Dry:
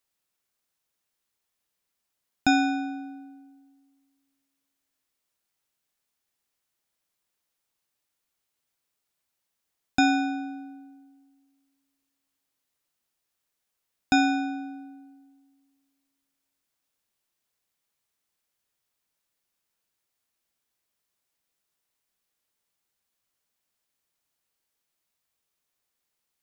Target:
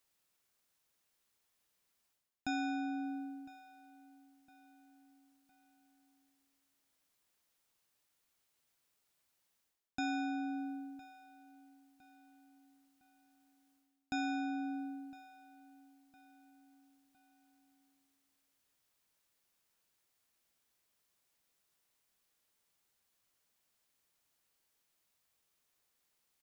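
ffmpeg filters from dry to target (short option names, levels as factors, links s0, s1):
-filter_complex "[0:a]areverse,acompressor=threshold=0.0112:ratio=4,areverse,asplit=2[s0][s1];[s1]adelay=1009,lowpass=f=4200:p=1,volume=0.119,asplit=2[s2][s3];[s3]adelay=1009,lowpass=f=4200:p=1,volume=0.43,asplit=2[s4][s5];[s5]adelay=1009,lowpass=f=4200:p=1,volume=0.43[s6];[s0][s2][s4][s6]amix=inputs=4:normalize=0,volume=1.19"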